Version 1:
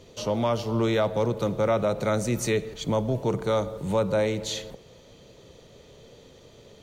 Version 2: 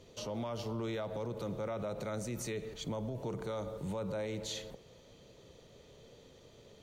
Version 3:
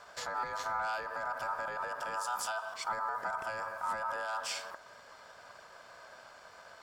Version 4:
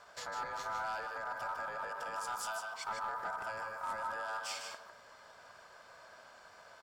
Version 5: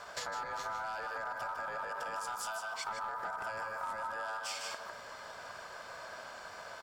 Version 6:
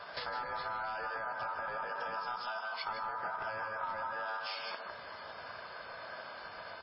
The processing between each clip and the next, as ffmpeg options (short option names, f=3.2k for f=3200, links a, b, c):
-af "alimiter=limit=-24dB:level=0:latency=1:release=67,volume=-7dB"
-filter_complex "[0:a]acrossover=split=450|3000[a][b][c];[b]acompressor=threshold=-53dB:ratio=6[d];[a][d][c]amix=inputs=3:normalize=0,aeval=exprs='val(0)*sin(2*PI*1100*n/s)':c=same,volume=7dB"
-af "aeval=exprs='clip(val(0),-1,0.0355)':c=same,aecho=1:1:153:0.501,volume=-4dB"
-af "acompressor=threshold=-46dB:ratio=6,volume=9.5dB"
-af "volume=1dB" -ar 12000 -c:a libmp3lame -b:a 16k